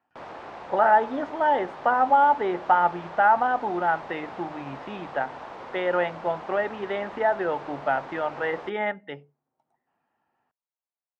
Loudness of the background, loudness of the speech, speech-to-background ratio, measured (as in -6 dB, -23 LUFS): -40.0 LUFS, -24.5 LUFS, 15.5 dB